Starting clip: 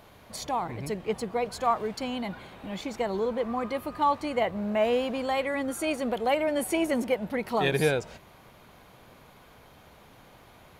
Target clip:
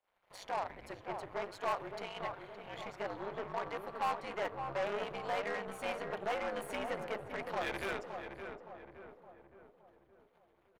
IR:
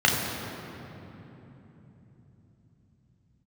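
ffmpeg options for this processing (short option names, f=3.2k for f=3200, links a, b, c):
-filter_complex "[0:a]highpass=57,bandreject=f=50:t=h:w=6,bandreject=f=100:t=h:w=6,bandreject=f=150:t=h:w=6,bandreject=f=200:t=h:w=6,bandreject=f=250:t=h:w=6,bandreject=f=300:t=h:w=6,bandreject=f=350:t=h:w=6,bandreject=f=400:t=h:w=6,bandreject=f=450:t=h:w=6,bandreject=f=500:t=h:w=6,agate=range=-26dB:threshold=-51dB:ratio=16:detection=peak,afreqshift=-74,tremolo=f=200:d=0.857,aeval=exprs='(tanh(31.6*val(0)+0.3)-tanh(0.3))/31.6':c=same,acrossover=split=510 3100:gain=0.2 1 0.251[a][b][c];[a][b][c]amix=inputs=3:normalize=0,aeval=exprs='0.0376*(cos(1*acos(clip(val(0)/0.0376,-1,1)))-cos(1*PI/2))+0.00211*(cos(7*acos(clip(val(0)/0.0376,-1,1)))-cos(7*PI/2))':c=same,asplit=2[d][e];[e]adelay=567,lowpass=f=1.5k:p=1,volume=-6dB,asplit=2[f][g];[g]adelay=567,lowpass=f=1.5k:p=1,volume=0.52,asplit=2[h][i];[i]adelay=567,lowpass=f=1.5k:p=1,volume=0.52,asplit=2[j][k];[k]adelay=567,lowpass=f=1.5k:p=1,volume=0.52,asplit=2[l][m];[m]adelay=567,lowpass=f=1.5k:p=1,volume=0.52,asplit=2[n][o];[o]adelay=567,lowpass=f=1.5k:p=1,volume=0.52[p];[f][h][j][l][n][p]amix=inputs=6:normalize=0[q];[d][q]amix=inputs=2:normalize=0,volume=2.5dB"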